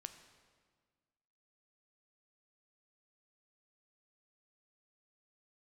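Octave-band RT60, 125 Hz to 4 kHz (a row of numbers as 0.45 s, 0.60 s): 1.9 s, 1.9 s, 1.7 s, 1.6 s, 1.5 s, 1.3 s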